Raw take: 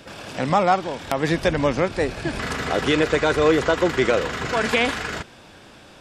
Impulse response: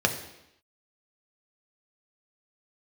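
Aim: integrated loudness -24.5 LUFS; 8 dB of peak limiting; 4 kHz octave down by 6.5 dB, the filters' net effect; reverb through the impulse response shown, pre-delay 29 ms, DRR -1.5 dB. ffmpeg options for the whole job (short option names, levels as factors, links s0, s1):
-filter_complex "[0:a]equalizer=f=4000:t=o:g=-9,alimiter=limit=0.2:level=0:latency=1,asplit=2[s0][s1];[1:a]atrim=start_sample=2205,adelay=29[s2];[s1][s2]afir=irnorm=-1:irlink=0,volume=0.282[s3];[s0][s3]amix=inputs=2:normalize=0,volume=0.668"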